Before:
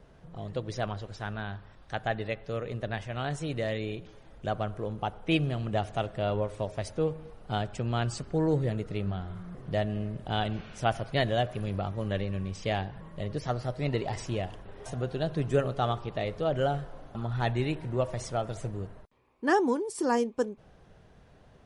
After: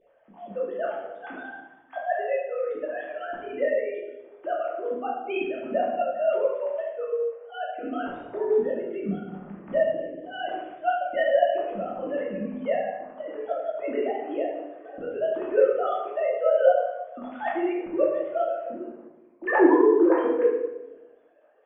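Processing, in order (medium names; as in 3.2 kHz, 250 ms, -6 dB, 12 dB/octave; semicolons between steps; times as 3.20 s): formants replaced by sine waves; treble shelf 2.3 kHz -11 dB; simulated room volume 450 m³, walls mixed, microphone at 2.6 m; trim -1.5 dB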